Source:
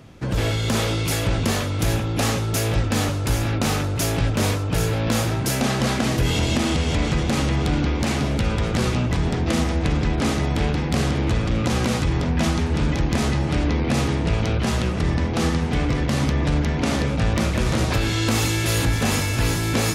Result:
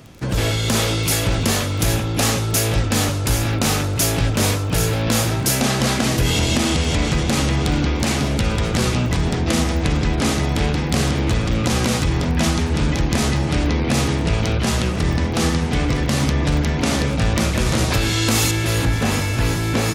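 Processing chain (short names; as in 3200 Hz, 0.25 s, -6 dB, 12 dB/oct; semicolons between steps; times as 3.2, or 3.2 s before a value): outdoor echo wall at 26 m, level -28 dB; crackle 18/s -34 dBFS; high shelf 4000 Hz +6.5 dB, from 18.51 s -4 dB; gain +2 dB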